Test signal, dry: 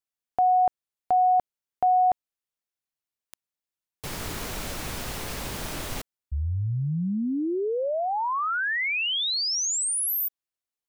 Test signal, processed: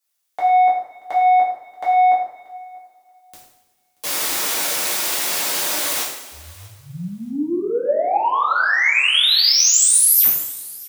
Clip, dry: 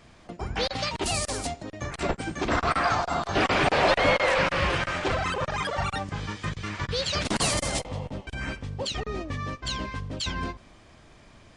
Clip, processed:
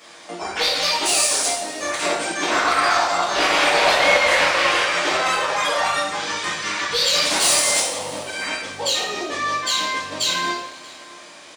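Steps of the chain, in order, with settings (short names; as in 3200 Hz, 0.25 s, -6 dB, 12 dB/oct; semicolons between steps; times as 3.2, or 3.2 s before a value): HPF 450 Hz 12 dB/oct; high shelf 4300 Hz +8.5 dB; in parallel at -1.5 dB: compressor, threshold -35 dBFS; on the sum: soft clip -18 dBFS; on a send: feedback echo 0.632 s, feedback 18%, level -23.5 dB; on the sum: two-slope reverb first 0.7 s, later 2.5 s, from -18 dB, DRR -7.5 dB; gain -1 dB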